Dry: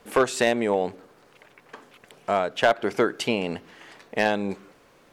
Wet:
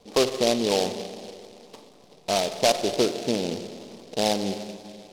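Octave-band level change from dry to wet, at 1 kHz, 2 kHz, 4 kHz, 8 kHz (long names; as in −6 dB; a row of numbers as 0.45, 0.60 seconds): −2.5, −7.5, +6.0, +6.5 decibels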